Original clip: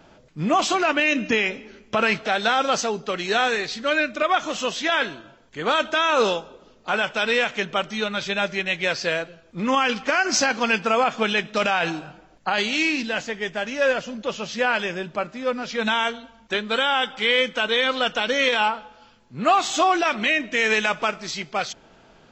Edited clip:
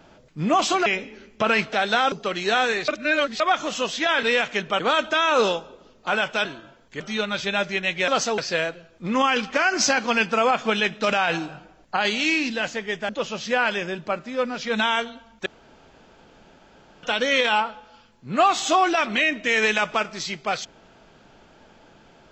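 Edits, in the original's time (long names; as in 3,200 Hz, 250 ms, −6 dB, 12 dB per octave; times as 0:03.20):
0:00.86–0:01.39: remove
0:02.65–0:02.95: move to 0:08.91
0:03.71–0:04.23: reverse
0:05.06–0:05.61: swap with 0:07.26–0:07.83
0:13.62–0:14.17: remove
0:16.54–0:18.11: fill with room tone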